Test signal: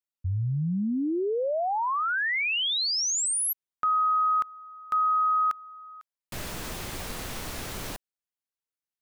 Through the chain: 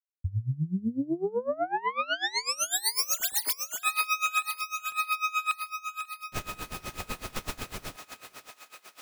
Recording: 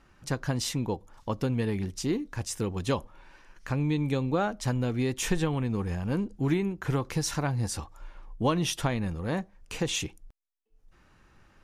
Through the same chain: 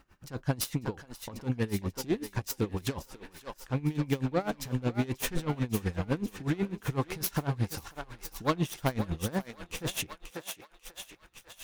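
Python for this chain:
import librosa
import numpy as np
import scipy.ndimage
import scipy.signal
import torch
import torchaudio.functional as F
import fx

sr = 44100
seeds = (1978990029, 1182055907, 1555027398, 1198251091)

p1 = fx.self_delay(x, sr, depth_ms=0.15)
p2 = fx.level_steps(p1, sr, step_db=18)
p3 = p1 + (p2 * 10.0 ** (0.0 / 20.0))
p4 = fx.quant_dither(p3, sr, seeds[0], bits=12, dither='none')
p5 = fx.echo_thinned(p4, sr, ms=542, feedback_pct=68, hz=500.0, wet_db=-7.5)
y = p5 * 10.0 ** (-21 * (0.5 - 0.5 * np.cos(2.0 * np.pi * 8.0 * np.arange(len(p5)) / sr)) / 20.0)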